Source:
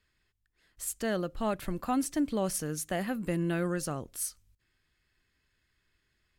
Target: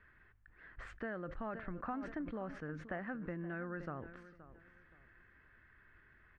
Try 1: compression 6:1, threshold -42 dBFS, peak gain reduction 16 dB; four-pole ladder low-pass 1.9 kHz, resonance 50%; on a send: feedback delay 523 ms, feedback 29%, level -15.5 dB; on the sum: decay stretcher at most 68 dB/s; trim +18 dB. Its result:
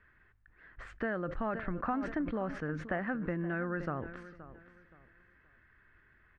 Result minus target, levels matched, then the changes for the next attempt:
compression: peak gain reduction -7.5 dB
change: compression 6:1, threshold -51 dBFS, peak gain reduction 23.5 dB

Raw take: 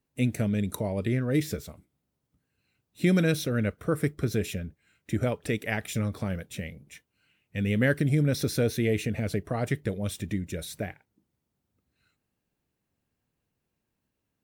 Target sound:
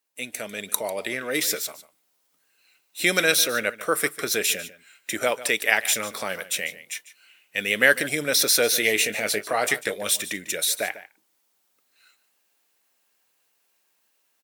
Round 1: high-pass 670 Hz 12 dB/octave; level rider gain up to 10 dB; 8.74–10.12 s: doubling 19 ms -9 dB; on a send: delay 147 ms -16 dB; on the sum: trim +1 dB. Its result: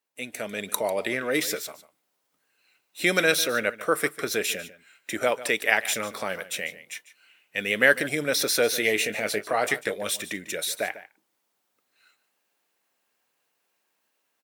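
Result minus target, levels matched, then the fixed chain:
8 kHz band -3.5 dB
high-pass 670 Hz 12 dB/octave; treble shelf 3 kHz +7.5 dB; level rider gain up to 10 dB; 8.74–10.12 s: doubling 19 ms -9 dB; on a send: delay 147 ms -16 dB; on the sum: trim +1 dB

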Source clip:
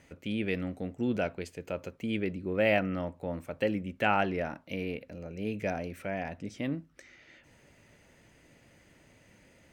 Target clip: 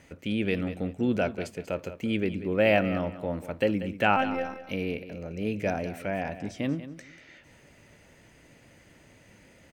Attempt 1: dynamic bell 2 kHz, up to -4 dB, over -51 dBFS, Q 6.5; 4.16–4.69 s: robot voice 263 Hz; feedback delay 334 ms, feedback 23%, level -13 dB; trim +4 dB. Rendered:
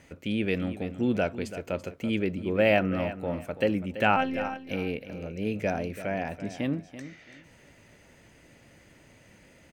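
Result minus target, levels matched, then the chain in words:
echo 145 ms late
dynamic bell 2 kHz, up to -4 dB, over -51 dBFS, Q 6.5; 4.16–4.69 s: robot voice 263 Hz; feedback delay 189 ms, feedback 23%, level -13 dB; trim +4 dB

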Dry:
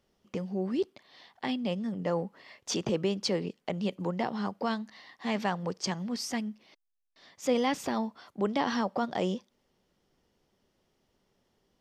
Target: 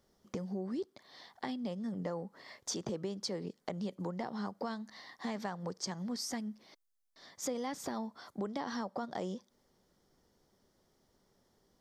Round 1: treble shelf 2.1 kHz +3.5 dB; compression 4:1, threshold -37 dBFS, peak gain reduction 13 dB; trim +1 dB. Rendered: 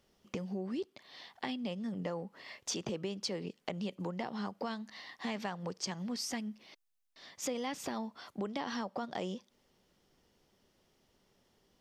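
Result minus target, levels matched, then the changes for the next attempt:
2 kHz band +3.0 dB
add after compression: peaking EQ 2.7 kHz -12.5 dB 0.53 oct

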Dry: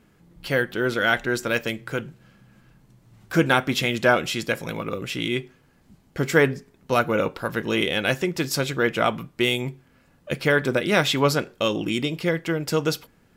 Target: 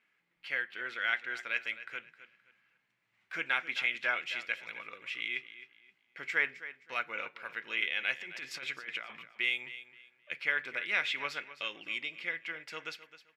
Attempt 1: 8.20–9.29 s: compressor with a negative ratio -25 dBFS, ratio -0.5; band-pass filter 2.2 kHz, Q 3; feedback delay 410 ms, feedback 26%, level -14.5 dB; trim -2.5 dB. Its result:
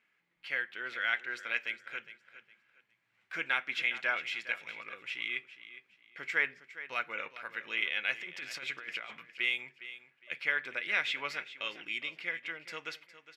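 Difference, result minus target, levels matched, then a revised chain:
echo 148 ms late
8.20–9.29 s: compressor with a negative ratio -25 dBFS, ratio -0.5; band-pass filter 2.2 kHz, Q 3; feedback delay 262 ms, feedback 26%, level -14.5 dB; trim -2.5 dB

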